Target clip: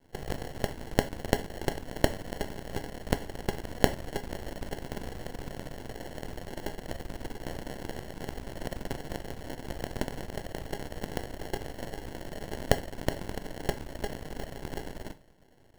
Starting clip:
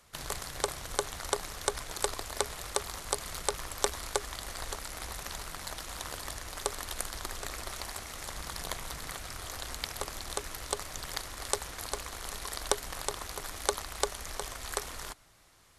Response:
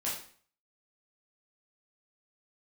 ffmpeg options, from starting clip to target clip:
-filter_complex "[0:a]acrusher=samples=36:mix=1:aa=0.000001,aeval=exprs='max(val(0),0)':c=same,asplit=2[a][b];[1:a]atrim=start_sample=2205,atrim=end_sample=3969[c];[b][c]afir=irnorm=-1:irlink=0,volume=-14dB[d];[a][d]amix=inputs=2:normalize=0,volume=4dB"

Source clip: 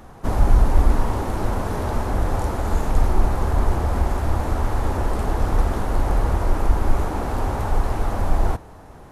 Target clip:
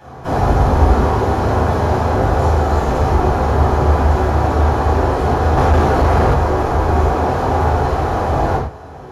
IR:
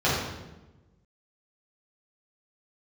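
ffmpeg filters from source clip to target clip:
-filter_complex "[0:a]bass=f=250:g=-8,treble=f=4k:g=1[a];[1:a]atrim=start_sample=2205,afade=t=out:st=0.18:d=0.01,atrim=end_sample=8379[b];[a][b]afir=irnorm=-1:irlink=0,asettb=1/sr,asplit=3[c][d][e];[c]atrim=end=5.574[f];[d]atrim=start=5.57:end=6.34,asetpts=PTS-STARTPTS,afade=t=in:d=0.004:c=qsin,afade=t=out:st=0.766:d=0.004:c=qsin,acontrast=24[g];[e]atrim=start=6.336[h];[f][g]acrossfade=d=0.004:c1=hsin:c2=qsin[i];[i][h]acrossfade=d=0.004:c1=qsin:c2=hsin,volume=-6.5dB"

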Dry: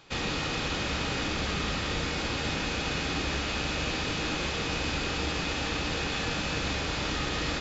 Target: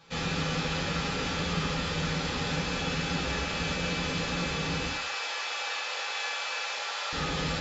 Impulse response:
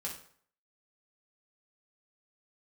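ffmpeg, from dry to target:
-filter_complex "[0:a]asettb=1/sr,asplit=3[a][b][c];[a]atrim=end=4.874[d];[b]atrim=start=4.87:end=7.13,asetpts=PTS-STARTPTS,afade=t=in:d=0.004:c=qsin,afade=t=out:st=2.256:d=0.004:c=qsin,highpass=f=620:w=0.5412,highpass=f=620:w=1.3066[e];[c]atrim=start=7.126[f];[d][e]acrossfade=d=0.004:c1=hsin:c2=qsin[g];[g][f]acrossfade=d=0.004:c1=qsin:c2=hsin[h];[1:a]atrim=start_sample=2205[i];[h][i]afir=irnorm=-1:irlink=0"

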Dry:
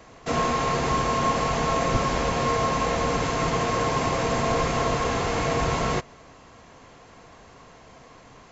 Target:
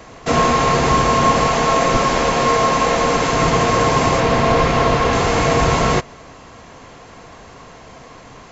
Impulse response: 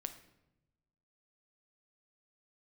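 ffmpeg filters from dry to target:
-filter_complex "[0:a]asettb=1/sr,asplit=3[a][b][c];[a]atrim=end=1.474[d];[b]atrim=start=1.47:end=3.33,asetpts=PTS-STARTPTS,afade=t=in:d=0.004:c=qsin,afade=t=out:st=1.856:d=0.004:c=qsin,equalizer=f=76:t=o:w=2:g=-9[e];[c]atrim=start=3.326[f];[d][e]acrossfade=d=0.004:c1=hsin:c2=qsin[g];[g][f]acrossfade=d=0.004:c1=qsin:c2=hsin,asettb=1/sr,asplit=3[h][i][j];[h]atrim=end=4.204[k];[i]atrim=start=4.2:end=5.13,asetpts=PTS-STARTPTS,afade=t=in:d=0.004:c=qsin,afade=t=out:st=0.926:d=0.004:c=qsin,acrossover=split=5500[l][m];[m]acompressor=threshold=-54dB:ratio=4:attack=1:release=60[n];[l][n]amix=inputs=2:normalize=0[o];[j]atrim=start=5.126[p];[k][o]acrossfade=d=0.004:c1=hsin:c2=qsin[q];[q][p]acrossfade=d=0.004:c1=qsin:c2=hsin,volume=9dB"

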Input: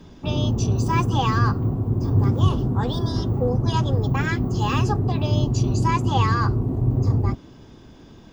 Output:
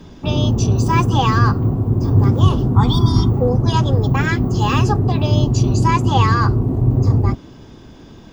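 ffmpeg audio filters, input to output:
-filter_complex "[0:a]asettb=1/sr,asplit=3[a][b][c];[a]atrim=end=2.764[d];[b]atrim=start=2.76:end=3.3,asetpts=PTS-STARTPTS,afade=t=in:d=0.004:c=qsin,afade=t=out:st=0.536:d=0.004:c=qsin,aecho=1:1:0.9:0.87,atrim=end_sample=23814[e];[c]atrim=start=3.296[f];[d][e]acrossfade=d=0.004:c1=hsin:c2=qsin[g];[g][f]acrossfade=d=0.004:c1=qsin:c2=hsin,volume=5.5dB"

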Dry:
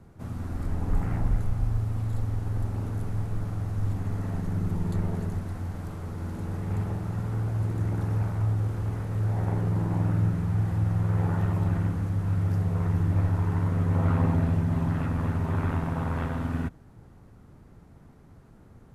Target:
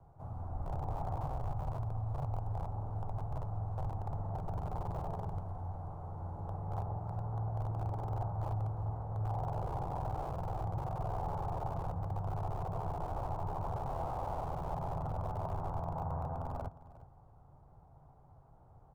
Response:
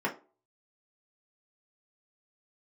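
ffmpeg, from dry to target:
-filter_complex "[0:a]lowshelf=f=160:t=q:w=1.5:g=-8,acrossover=split=210|1400[a][b][c];[a]aeval=exprs='(mod(33.5*val(0)+1,2)-1)/33.5':c=same[d];[b]alimiter=level_in=3.5dB:limit=-24dB:level=0:latency=1,volume=-3.5dB[e];[c]acompressor=threshold=-60dB:ratio=6[f];[d][e][f]amix=inputs=3:normalize=0,firequalizer=gain_entry='entry(140,0);entry(200,-24);entry(760,1);entry(1800,-24)':delay=0.05:min_phase=1,asplit=2[g][h];[h]aecho=0:1:357:0.133[i];[g][i]amix=inputs=2:normalize=0,volume=2dB"

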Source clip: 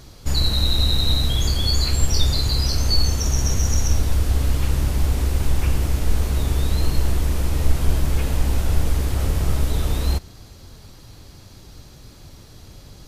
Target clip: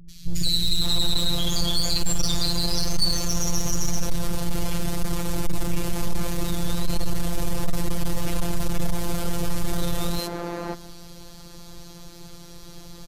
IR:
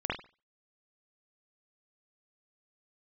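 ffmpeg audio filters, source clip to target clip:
-filter_complex "[0:a]acrossover=split=200|2100[a][b][c];[c]adelay=90[d];[b]adelay=560[e];[a][e][d]amix=inputs=3:normalize=0,asplit=2[f][g];[1:a]atrim=start_sample=2205,adelay=107[h];[g][h]afir=irnorm=-1:irlink=0,volume=-27dB[i];[f][i]amix=inputs=2:normalize=0,asoftclip=type=hard:threshold=-19dB,afftfilt=real='hypot(re,im)*cos(PI*b)':imag='0':win_size=1024:overlap=0.75,acontrast=70"

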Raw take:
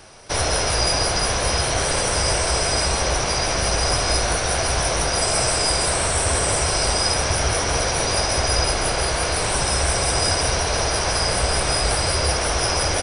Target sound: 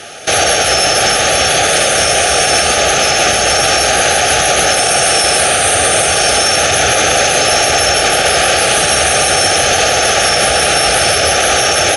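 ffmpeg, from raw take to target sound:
-af "highpass=f=480:p=1,aemphasis=mode=reproduction:type=75fm,aexciter=amount=2.3:drive=1.7:freq=2.5k,asetrate=48000,aresample=44100,asuperstop=centerf=1000:order=8:qfactor=3.1,alimiter=level_in=19dB:limit=-1dB:release=50:level=0:latency=1,volume=-1dB"

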